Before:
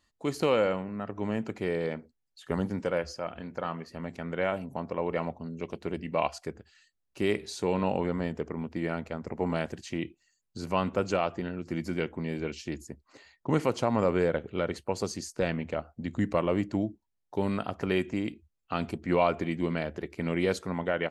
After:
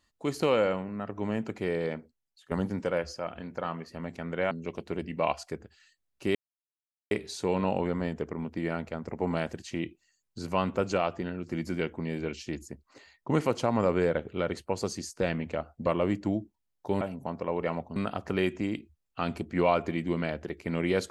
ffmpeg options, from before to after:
ffmpeg -i in.wav -filter_complex "[0:a]asplit=7[link_01][link_02][link_03][link_04][link_05][link_06][link_07];[link_01]atrim=end=2.51,asetpts=PTS-STARTPTS,afade=type=out:start_time=1.95:duration=0.56:silence=0.281838[link_08];[link_02]atrim=start=2.51:end=4.512,asetpts=PTS-STARTPTS,afade=type=in:duration=0.004:curve=hsin:silence=0.281838[link_09];[link_03]atrim=start=5.458:end=7.3,asetpts=PTS-STARTPTS,afade=type=out:start_time=1.838:duration=0.004:curve=hsin,apad=pad_dur=0.76[link_10];[link_04]atrim=start=7.3:end=16.052,asetpts=PTS-STARTPTS,afade=type=in:duration=0.004:curve=hsin[link_11];[link_05]atrim=start=16.338:end=17.492[link_12];[link_06]atrim=start=4.508:end=5.462[link_13];[link_07]atrim=start=17.488[link_14];[link_08][link_09]concat=n=2:v=0:a=1[link_15];[link_10][link_11]concat=n=2:v=0:a=1[link_16];[link_15][link_16]acrossfade=duration=0.004:curve1=hsin:curve2=hsin[link_17];[link_17][link_12]acrossfade=duration=0.004:curve1=hsin:curve2=hsin[link_18];[link_18][link_13]acrossfade=duration=0.004:curve1=hsin:curve2=hsin[link_19];[link_19][link_14]acrossfade=duration=0.004:curve1=hsin:curve2=hsin" out.wav

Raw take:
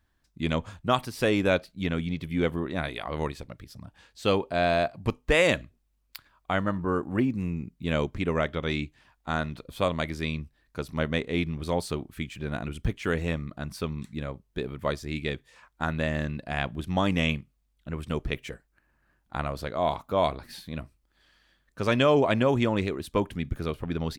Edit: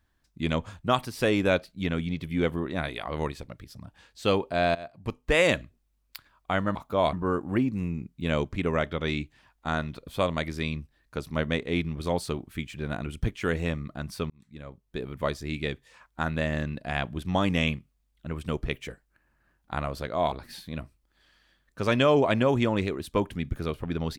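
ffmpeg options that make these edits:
ffmpeg -i in.wav -filter_complex "[0:a]asplit=6[link_01][link_02][link_03][link_04][link_05][link_06];[link_01]atrim=end=4.75,asetpts=PTS-STARTPTS,afade=type=out:start_time=4.746:duration=0.004:curve=hsin:silence=0.0944061[link_07];[link_02]atrim=start=4.75:end=6.752,asetpts=PTS-STARTPTS,afade=type=in:duration=0.66:silence=0.0944061[link_08];[link_03]atrim=start=19.938:end=20.322[link_09];[link_04]atrim=start=6.748:end=13.92,asetpts=PTS-STARTPTS,afade=type=out:start_time=7.168:duration=0.004:curve=hsin[link_10];[link_05]atrim=start=13.92:end=19.942,asetpts=PTS-STARTPTS,afade=type=in:duration=0.87[link_11];[link_06]atrim=start=20.318[link_12];[link_07][link_08]concat=n=2:v=0:a=1[link_13];[link_13][link_09]acrossfade=duration=0.004:curve1=hsin:curve2=hsin[link_14];[link_10][link_11]concat=n=2:v=0:a=1[link_15];[link_14][link_15]acrossfade=duration=0.004:curve1=hsin:curve2=hsin[link_16];[link_16][link_12]acrossfade=duration=0.004:curve1=hsin:curve2=hsin" out.wav

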